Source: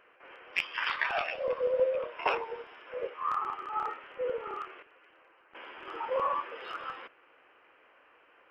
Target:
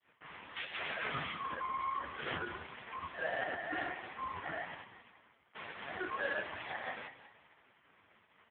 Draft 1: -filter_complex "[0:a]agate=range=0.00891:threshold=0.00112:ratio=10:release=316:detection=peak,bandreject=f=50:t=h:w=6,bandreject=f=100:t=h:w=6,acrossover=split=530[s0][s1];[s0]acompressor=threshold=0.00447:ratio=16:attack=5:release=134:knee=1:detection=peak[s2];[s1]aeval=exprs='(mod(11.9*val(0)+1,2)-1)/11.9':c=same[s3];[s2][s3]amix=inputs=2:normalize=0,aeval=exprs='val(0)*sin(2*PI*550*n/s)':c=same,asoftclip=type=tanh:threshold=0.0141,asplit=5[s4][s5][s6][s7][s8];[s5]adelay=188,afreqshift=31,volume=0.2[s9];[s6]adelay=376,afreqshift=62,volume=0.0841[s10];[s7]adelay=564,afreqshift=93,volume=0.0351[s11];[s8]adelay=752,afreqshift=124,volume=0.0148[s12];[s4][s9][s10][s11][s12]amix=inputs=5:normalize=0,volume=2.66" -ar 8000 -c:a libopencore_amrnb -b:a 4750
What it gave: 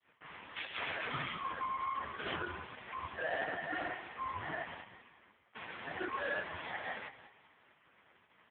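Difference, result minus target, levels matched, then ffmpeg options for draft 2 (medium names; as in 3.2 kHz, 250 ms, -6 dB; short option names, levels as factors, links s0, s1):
compression: peak gain reduction -7 dB
-filter_complex "[0:a]agate=range=0.00891:threshold=0.00112:ratio=10:release=316:detection=peak,bandreject=f=50:t=h:w=6,bandreject=f=100:t=h:w=6,acrossover=split=530[s0][s1];[s0]acompressor=threshold=0.00188:ratio=16:attack=5:release=134:knee=1:detection=peak[s2];[s1]aeval=exprs='(mod(11.9*val(0)+1,2)-1)/11.9':c=same[s3];[s2][s3]amix=inputs=2:normalize=0,aeval=exprs='val(0)*sin(2*PI*550*n/s)':c=same,asoftclip=type=tanh:threshold=0.0141,asplit=5[s4][s5][s6][s7][s8];[s5]adelay=188,afreqshift=31,volume=0.2[s9];[s6]adelay=376,afreqshift=62,volume=0.0841[s10];[s7]adelay=564,afreqshift=93,volume=0.0351[s11];[s8]adelay=752,afreqshift=124,volume=0.0148[s12];[s4][s9][s10][s11][s12]amix=inputs=5:normalize=0,volume=2.66" -ar 8000 -c:a libopencore_amrnb -b:a 4750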